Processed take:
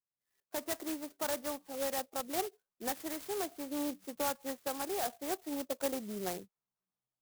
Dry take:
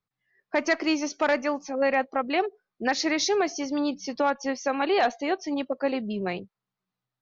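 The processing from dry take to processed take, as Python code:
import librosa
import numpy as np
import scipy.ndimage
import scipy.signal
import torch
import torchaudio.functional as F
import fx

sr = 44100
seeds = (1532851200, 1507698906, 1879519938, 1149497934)

y = fx.low_shelf(x, sr, hz=240.0, db=-11.0)
y = fx.rider(y, sr, range_db=4, speed_s=0.5)
y = fx.air_absorb(y, sr, metres=320.0)
y = fx.clock_jitter(y, sr, seeds[0], jitter_ms=0.12)
y = F.gain(torch.from_numpy(y), -8.0).numpy()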